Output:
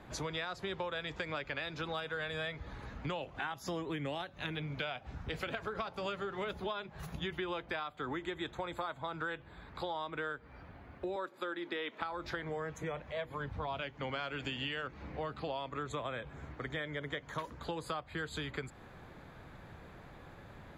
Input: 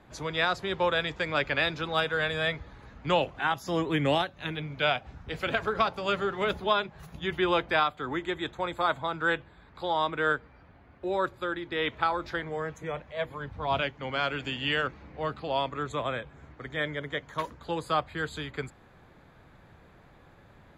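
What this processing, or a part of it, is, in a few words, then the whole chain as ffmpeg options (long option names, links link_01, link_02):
serial compression, peaks first: -filter_complex "[0:a]acompressor=threshold=-33dB:ratio=6,acompressor=threshold=-42dB:ratio=2,asettb=1/sr,asplit=3[link_01][link_02][link_03];[link_01]atrim=end=11.164[link_04];[link_02]atrim=start=11.16:end=12.02,asetpts=PTS-STARTPTS,afade=type=in:duration=0.004:curve=qsin,afade=type=out:start_time=0.856:duration=0.004:curve=qsin,highpass=frequency=210:width=0.5412,highpass=frequency=210:width=1.3066[link_05];[link_03]atrim=start=12.016[link_06];[link_04][link_05]acrossfade=duration=0.004:curve1=hsin:curve2=qsin[link_07];[link_07][link_06]acrossfade=duration=0.004:curve1=qsin:curve2=hsin,volume=3dB"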